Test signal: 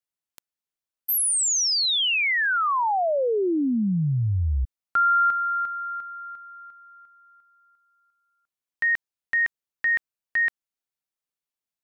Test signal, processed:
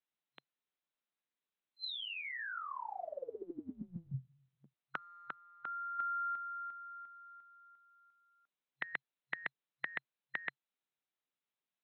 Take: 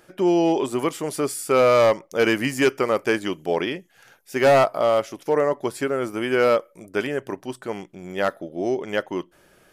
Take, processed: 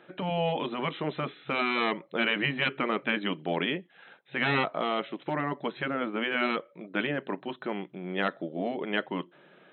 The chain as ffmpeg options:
-filter_complex "[0:a]afftfilt=real='re*between(b*sr/4096,130,4100)':imag='im*between(b*sr/4096,130,4100)':win_size=4096:overlap=0.75,acrossover=split=350|1600[s0][s1][s2];[s1]acompressor=threshold=0.0631:ratio=3:attack=0.13:release=677:knee=2.83:detection=peak[s3];[s0][s3][s2]amix=inputs=3:normalize=0,afftfilt=real='re*lt(hypot(re,im),0.355)':imag='im*lt(hypot(re,im),0.355)':win_size=1024:overlap=0.75"

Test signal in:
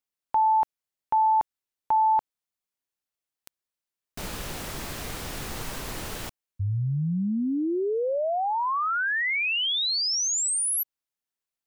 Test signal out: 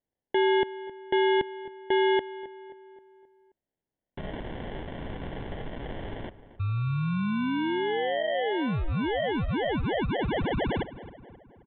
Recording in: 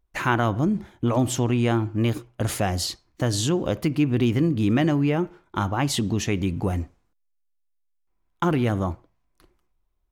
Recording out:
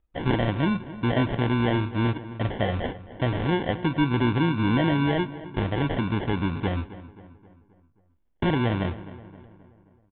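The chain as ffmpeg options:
-filter_complex "[0:a]acrusher=samples=35:mix=1:aa=0.000001,asplit=2[s0][s1];[s1]adelay=265,lowpass=f=2500:p=1,volume=0.168,asplit=2[s2][s3];[s3]adelay=265,lowpass=f=2500:p=1,volume=0.52,asplit=2[s4][s5];[s5]adelay=265,lowpass=f=2500:p=1,volume=0.52,asplit=2[s6][s7];[s7]adelay=265,lowpass=f=2500:p=1,volume=0.52,asplit=2[s8][s9];[s9]adelay=265,lowpass=f=2500:p=1,volume=0.52[s10];[s0][s2][s4][s6][s8][s10]amix=inputs=6:normalize=0,aresample=8000,aresample=44100,volume=0.841"

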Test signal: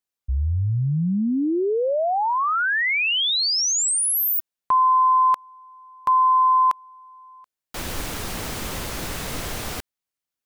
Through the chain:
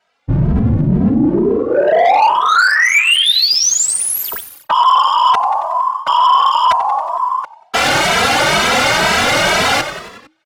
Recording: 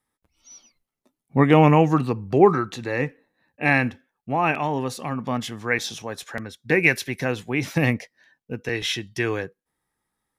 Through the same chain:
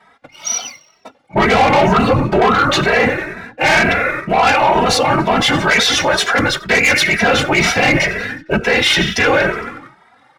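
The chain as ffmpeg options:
-filter_complex "[0:a]highpass=f=77:w=0.5412,highpass=f=77:w=1.3066,aecho=1:1:1.4:0.5,afftfilt=real='hypot(re,im)*cos(2*PI*random(0))':imag='hypot(re,im)*sin(2*PI*random(1))':win_size=512:overlap=0.75,highshelf=f=4400:g=-10,asplit=2[s0][s1];[s1]asplit=5[s2][s3][s4][s5][s6];[s2]adelay=92,afreqshift=-64,volume=0.0708[s7];[s3]adelay=184,afreqshift=-128,volume=0.0452[s8];[s4]adelay=276,afreqshift=-192,volume=0.0288[s9];[s5]adelay=368,afreqshift=-256,volume=0.0186[s10];[s6]adelay=460,afreqshift=-320,volume=0.0119[s11];[s7][s8][s9][s10][s11]amix=inputs=5:normalize=0[s12];[s0][s12]amix=inputs=2:normalize=0,asplit=2[s13][s14];[s14]highpass=f=720:p=1,volume=12.6,asoftclip=type=tanh:threshold=0.376[s15];[s13][s15]amix=inputs=2:normalize=0,lowpass=f=5400:p=1,volume=0.501,areverse,acompressor=threshold=0.0282:ratio=8:attack=4.9:release=108:knee=6:detection=rms,areverse,apsyclip=47.3,adynamicsmooth=sensitivity=7:basefreq=3900,asplit=2[s16][s17];[s17]adelay=2.7,afreqshift=2.1[s18];[s16][s18]amix=inputs=2:normalize=1,volume=0.501"

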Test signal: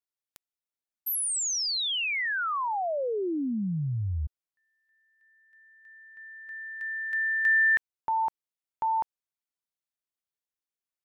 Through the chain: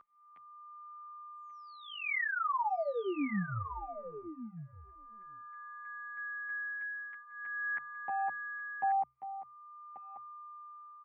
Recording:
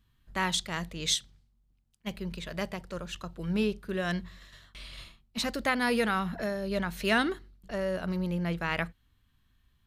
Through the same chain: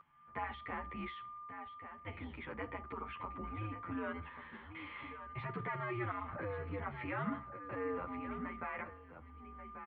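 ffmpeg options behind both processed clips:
-filter_complex "[0:a]alimiter=level_in=1.12:limit=0.0631:level=0:latency=1:release=128,volume=0.891,bandreject=f=60:t=h:w=6,bandreject=f=120:t=h:w=6,bandreject=f=180:t=h:w=6,bandreject=f=240:t=h:w=6,aecho=1:1:0.9:0.43,acompressor=threshold=0.00708:ratio=2.5:attack=0.2:release=22:knee=6:detection=peak,highpass=f=260:t=q:w=0.5412,highpass=f=260:t=q:w=1.307,lowpass=f=2500:t=q:w=0.5176,lowpass=f=2500:t=q:w=0.7071,lowpass=f=2500:t=q:w=1.932,afreqshift=-110,asplit=2[s0][s1];[s1]aecho=0:1:1136:0.299[s2];[s0][s2]amix=inputs=2:normalize=0,aeval=exprs='val(0)+0.00178*sin(2*PI*1200*n/s)':c=same,asplit=2[s3][s4];[s4]adelay=9.9,afreqshift=-0.44[s5];[s3][s5]amix=inputs=2:normalize=1,volume=2.82"

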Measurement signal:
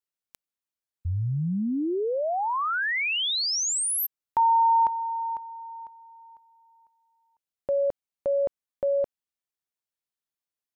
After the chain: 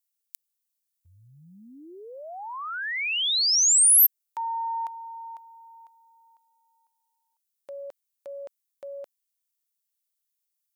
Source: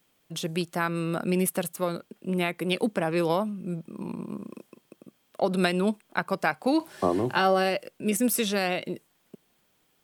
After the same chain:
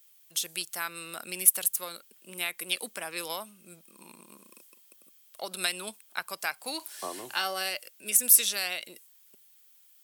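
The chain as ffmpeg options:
-af "aeval=exprs='0.447*(cos(1*acos(clip(val(0)/0.447,-1,1)))-cos(1*PI/2))+0.00501*(cos(2*acos(clip(val(0)/0.447,-1,1)))-cos(2*PI/2))':c=same,aderivative,volume=2.51"

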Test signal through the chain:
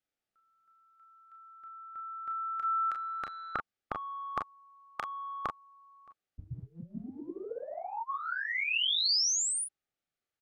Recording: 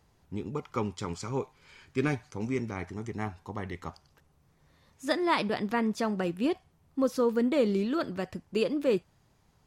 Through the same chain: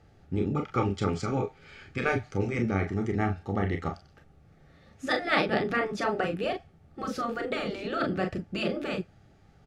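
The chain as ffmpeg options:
-filter_complex "[0:a]asuperstop=centerf=1000:order=8:qfactor=4.6,aemphasis=mode=reproduction:type=75fm,acontrast=76,asplit=2[s0][s1];[s1]aecho=0:1:31|41:0.398|0.376[s2];[s0][s2]amix=inputs=2:normalize=0,afftfilt=real='re*lt(hypot(re,im),0.501)':imag='im*lt(hypot(re,im),0.501)':win_size=1024:overlap=0.75"

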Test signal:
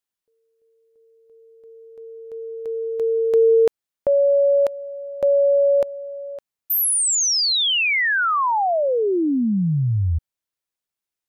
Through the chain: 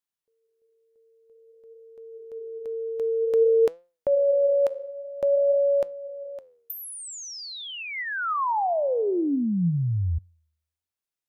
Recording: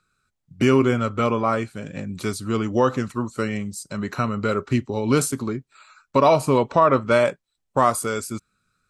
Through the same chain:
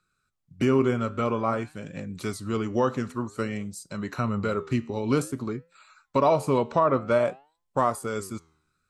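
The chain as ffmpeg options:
-filter_complex "[0:a]acrossover=split=1400[s0][s1];[s1]acompressor=threshold=0.0251:ratio=16:attack=25:release=591:detection=peak[s2];[s0][s2]amix=inputs=2:normalize=0,flanger=delay=5.7:depth=7.3:regen=89:speed=0.52:shape=sinusoidal"

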